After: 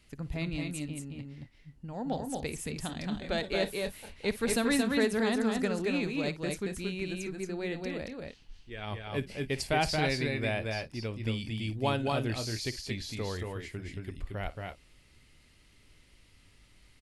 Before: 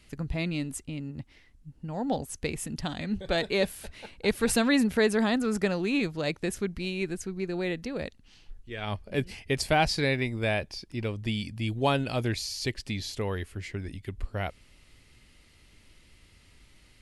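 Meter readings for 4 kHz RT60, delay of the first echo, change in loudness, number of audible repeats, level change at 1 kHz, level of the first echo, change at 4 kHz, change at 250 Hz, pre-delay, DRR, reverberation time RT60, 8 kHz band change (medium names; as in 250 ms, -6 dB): no reverb, 55 ms, -3.5 dB, 2, -3.5 dB, -17.5 dB, -3.0 dB, -3.5 dB, no reverb, no reverb, no reverb, -3.0 dB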